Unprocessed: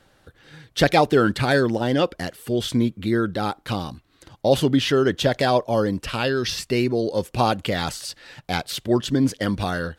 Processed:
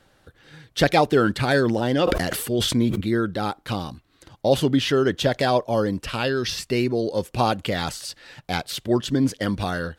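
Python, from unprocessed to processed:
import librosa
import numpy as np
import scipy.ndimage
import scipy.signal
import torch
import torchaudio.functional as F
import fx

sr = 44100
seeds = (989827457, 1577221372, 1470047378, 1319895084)

y = fx.sustainer(x, sr, db_per_s=33.0, at=(1.51, 3.01))
y = y * librosa.db_to_amplitude(-1.0)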